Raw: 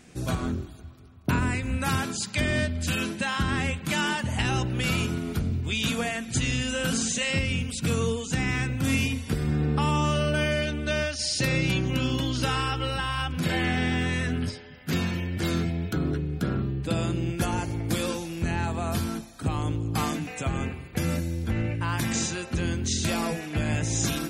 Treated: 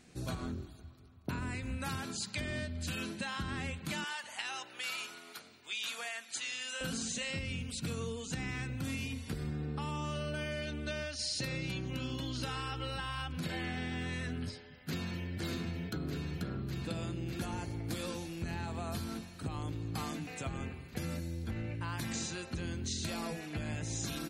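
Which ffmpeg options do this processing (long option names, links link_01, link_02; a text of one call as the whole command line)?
ffmpeg -i in.wav -filter_complex "[0:a]asettb=1/sr,asplit=3[link_01][link_02][link_03];[link_01]atrim=end=4.044[link_04];[link_02]atrim=start=4.04:end=6.81,asetpts=PTS-STARTPTS,afade=type=in:duration=0.004:curve=qsin,afade=type=out:start_time=2.766:duration=0.004:curve=qsin,highpass=880[link_05];[link_03]atrim=start=6.806[link_06];[link_04][link_05]acrossfade=duration=0.004:curve1=hsin:curve2=qsin[link_07];[link_07][link_06]acrossfade=duration=0.004:curve1=qsin:curve2=hsin,asplit=2[link_08][link_09];[link_09]afade=type=in:start_time=14.6:duration=0.01,afade=type=out:start_time=15.29:duration=0.01,aecho=0:1:600|1200|1800|2400|3000|3600|4200|4800|5400|6000|6600|7200:0.668344|0.534675|0.42774|0.342192|0.273754|0.219003|0.175202|0.140162|0.11213|0.0897036|0.0717629|0.0574103[link_10];[link_08][link_10]amix=inputs=2:normalize=0,acompressor=threshold=-26dB:ratio=6,equalizer=frequency=4200:width=7.9:gain=7.5,volume=-8dB" out.wav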